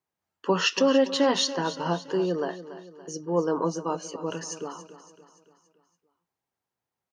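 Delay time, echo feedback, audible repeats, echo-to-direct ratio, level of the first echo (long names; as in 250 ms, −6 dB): 284 ms, 50%, 4, −12.5 dB, −14.0 dB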